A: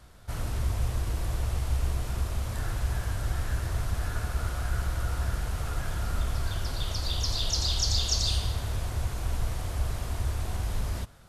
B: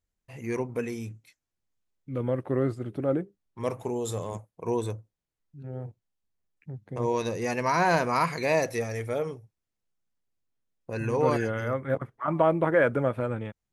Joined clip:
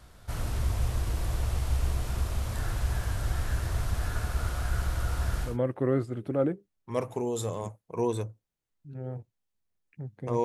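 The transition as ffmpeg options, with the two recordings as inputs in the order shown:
ffmpeg -i cue0.wav -i cue1.wav -filter_complex "[0:a]apad=whole_dur=10.44,atrim=end=10.44,atrim=end=5.58,asetpts=PTS-STARTPTS[link_01];[1:a]atrim=start=2.11:end=7.13,asetpts=PTS-STARTPTS[link_02];[link_01][link_02]acrossfade=duration=0.16:curve1=tri:curve2=tri" out.wav

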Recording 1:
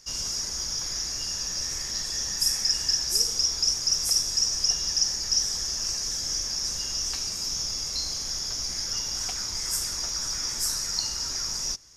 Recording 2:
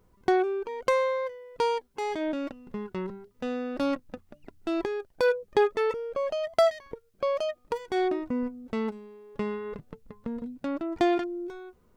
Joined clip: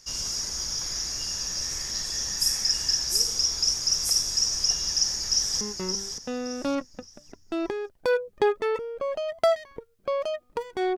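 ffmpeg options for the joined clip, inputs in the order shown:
ffmpeg -i cue0.wav -i cue1.wav -filter_complex "[0:a]apad=whole_dur=10.97,atrim=end=10.97,atrim=end=5.612[link_01];[1:a]atrim=start=2.758:end=8.12[link_02];[link_01][link_02]acrossfade=duration=0.004:curve1=hsin:curve2=hsin,asplit=2[link_03][link_04];[link_04]afade=type=in:start_time=4.95:duration=0.01,afade=type=out:start_time=5.61:duration=0.01,aecho=0:1:570|1140|1710|2280:0.473151|0.141945|0.0425836|0.0127751[link_05];[link_03][link_05]amix=inputs=2:normalize=0" out.wav

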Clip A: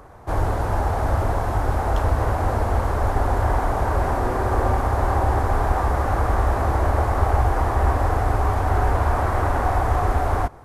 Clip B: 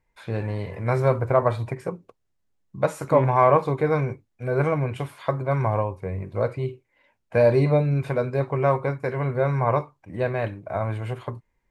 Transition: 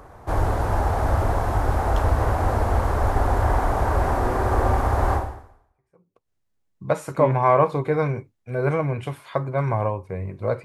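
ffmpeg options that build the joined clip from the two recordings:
ffmpeg -i cue0.wav -i cue1.wav -filter_complex "[0:a]apad=whole_dur=10.64,atrim=end=10.64,atrim=end=6.3,asetpts=PTS-STARTPTS[link_01];[1:a]atrim=start=1.07:end=6.57,asetpts=PTS-STARTPTS[link_02];[link_01][link_02]acrossfade=duration=1.16:curve1=exp:curve2=exp" out.wav

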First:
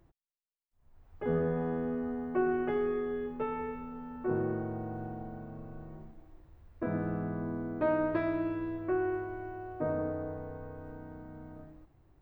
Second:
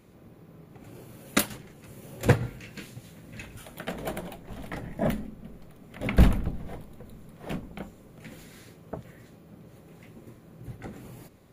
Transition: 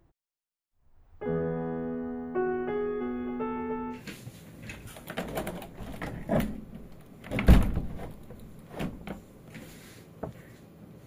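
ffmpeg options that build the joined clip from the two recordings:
ffmpeg -i cue0.wav -i cue1.wav -filter_complex "[0:a]asplit=3[link_01][link_02][link_03];[link_01]afade=type=out:start_time=3:duration=0.02[link_04];[link_02]aecho=1:1:300|600|900|1200|1500|1800:0.631|0.303|0.145|0.0698|0.0335|0.0161,afade=type=in:start_time=3:duration=0.02,afade=type=out:start_time=4.02:duration=0.02[link_05];[link_03]afade=type=in:start_time=4.02:duration=0.02[link_06];[link_04][link_05][link_06]amix=inputs=3:normalize=0,apad=whole_dur=11.06,atrim=end=11.06,atrim=end=4.02,asetpts=PTS-STARTPTS[link_07];[1:a]atrim=start=2.6:end=9.76,asetpts=PTS-STARTPTS[link_08];[link_07][link_08]acrossfade=duration=0.12:curve1=tri:curve2=tri" out.wav

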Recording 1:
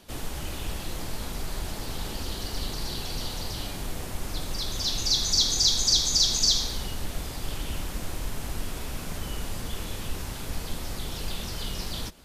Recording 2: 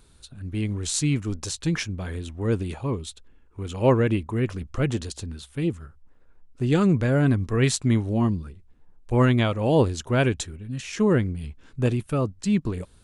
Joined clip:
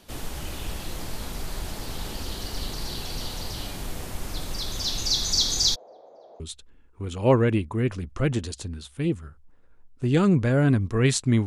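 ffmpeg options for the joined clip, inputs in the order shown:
ffmpeg -i cue0.wav -i cue1.wav -filter_complex "[0:a]asplit=3[link_01][link_02][link_03];[link_01]afade=type=out:start_time=5.74:duration=0.02[link_04];[link_02]asuperpass=centerf=590:order=4:qfactor=2.3,afade=type=in:start_time=5.74:duration=0.02,afade=type=out:start_time=6.4:duration=0.02[link_05];[link_03]afade=type=in:start_time=6.4:duration=0.02[link_06];[link_04][link_05][link_06]amix=inputs=3:normalize=0,apad=whole_dur=11.46,atrim=end=11.46,atrim=end=6.402[link_07];[1:a]atrim=start=2.978:end=8.04[link_08];[link_07][link_08]acrossfade=duration=0.004:curve1=hsin:curve2=hsin" out.wav

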